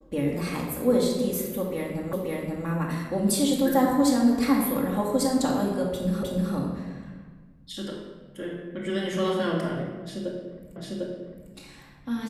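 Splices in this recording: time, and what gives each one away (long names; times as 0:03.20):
0:02.13: the same again, the last 0.53 s
0:06.23: the same again, the last 0.31 s
0:10.76: the same again, the last 0.75 s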